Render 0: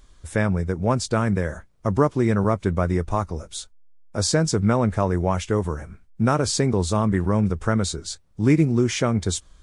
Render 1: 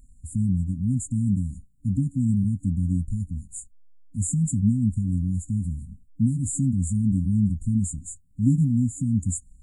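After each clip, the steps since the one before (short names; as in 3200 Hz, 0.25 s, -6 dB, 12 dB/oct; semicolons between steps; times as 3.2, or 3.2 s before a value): FFT band-reject 290–6800 Hz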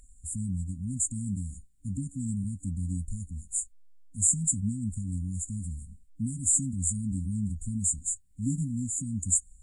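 graphic EQ 125/250/500/2000/4000/8000 Hz -8/-7/+6/+7/+5/+9 dB; gain -2.5 dB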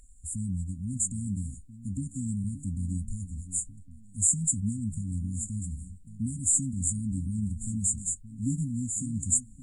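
echo with dull and thin repeats by turns 0.571 s, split 1800 Hz, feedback 50%, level -13 dB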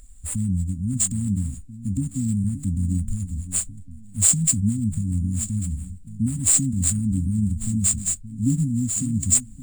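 median filter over 3 samples; gain +8.5 dB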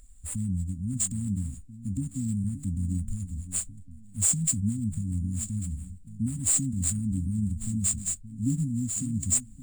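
hard clip -10 dBFS, distortion -24 dB; gain -6 dB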